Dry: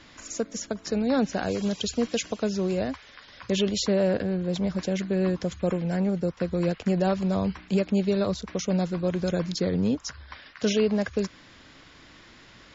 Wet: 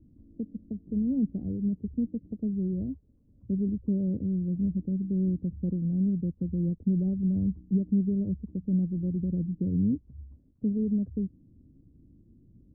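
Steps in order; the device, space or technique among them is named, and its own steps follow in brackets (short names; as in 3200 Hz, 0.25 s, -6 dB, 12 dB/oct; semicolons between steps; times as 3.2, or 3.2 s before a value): the neighbour's flat through the wall (LPF 280 Hz 24 dB/oct; bell 82 Hz +3 dB)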